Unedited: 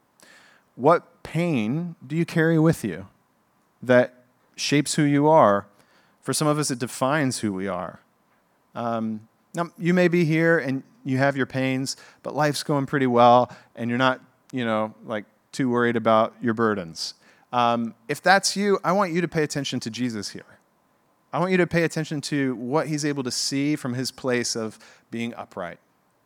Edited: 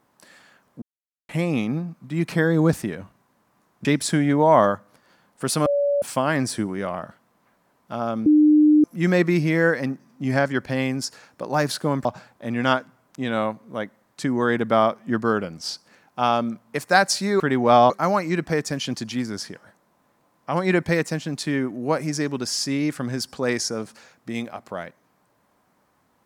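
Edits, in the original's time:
0:00.82–0:01.29: silence
0:03.85–0:04.70: remove
0:06.51–0:06.87: beep over 571 Hz −17.5 dBFS
0:09.11–0:09.69: beep over 302 Hz −11 dBFS
0:12.90–0:13.40: move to 0:18.75

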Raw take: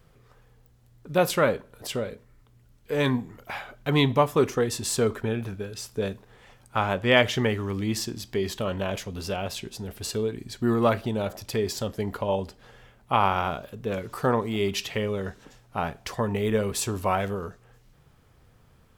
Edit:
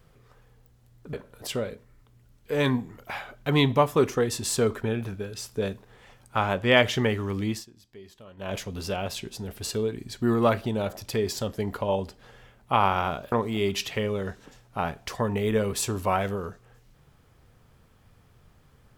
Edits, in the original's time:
0:01.13–0:01.53: remove
0:07.87–0:08.95: duck −19.5 dB, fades 0.18 s
0:13.72–0:14.31: remove

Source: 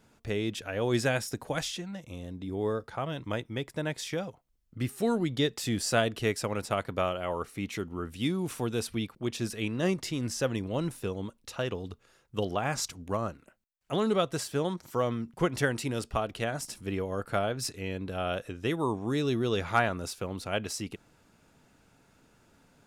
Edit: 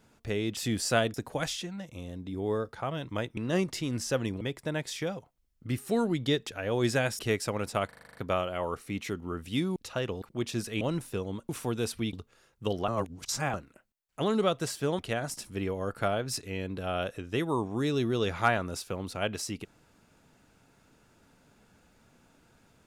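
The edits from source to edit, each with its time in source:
0:00.57–0:01.29: swap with 0:05.58–0:06.15
0:06.83: stutter 0.04 s, 8 plays
0:08.44–0:09.08: swap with 0:11.39–0:11.85
0:09.67–0:10.71: move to 0:03.52
0:12.60–0:13.26: reverse
0:14.71–0:16.30: remove

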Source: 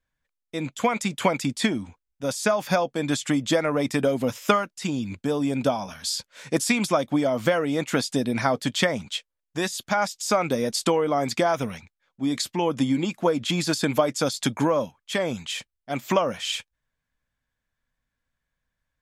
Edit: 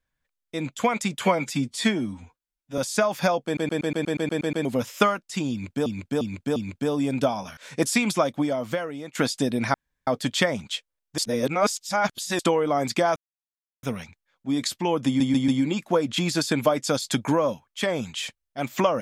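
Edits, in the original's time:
0:01.22–0:02.26: time-stretch 1.5×
0:02.93: stutter in place 0.12 s, 10 plays
0:04.99–0:05.34: repeat, 4 plays
0:06.00–0:06.31: remove
0:06.93–0:07.89: fade out, to −16 dB
0:08.48: splice in room tone 0.33 s
0:09.59–0:10.80: reverse
0:11.57: splice in silence 0.67 s
0:12.80: stutter 0.14 s, 4 plays

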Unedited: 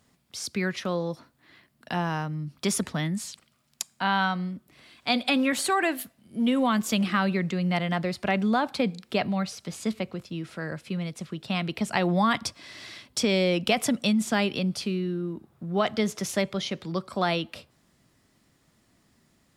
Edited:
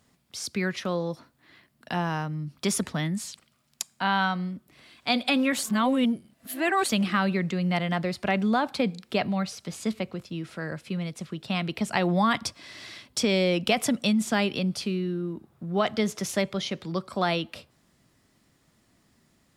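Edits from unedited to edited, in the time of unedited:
0:05.63–0:06.89: reverse

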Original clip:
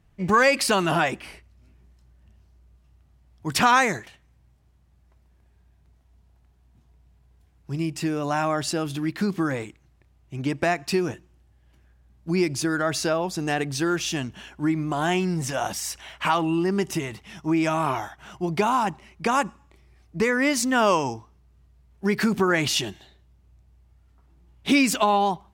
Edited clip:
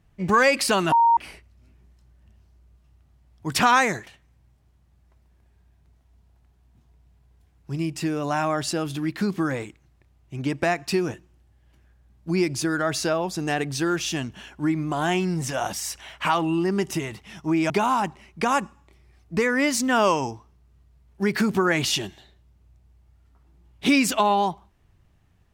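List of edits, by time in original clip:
0:00.92–0:01.17: beep over 929 Hz −13.5 dBFS
0:17.70–0:18.53: remove

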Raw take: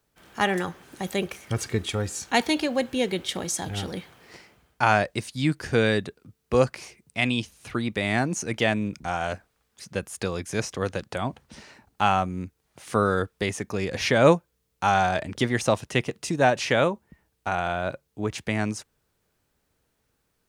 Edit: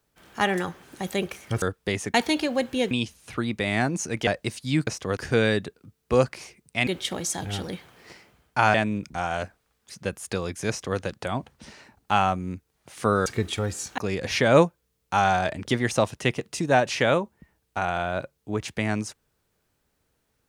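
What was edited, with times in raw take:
0:01.62–0:02.34: swap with 0:13.16–0:13.68
0:03.11–0:04.98: swap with 0:07.28–0:08.64
0:10.59–0:10.89: duplicate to 0:05.58

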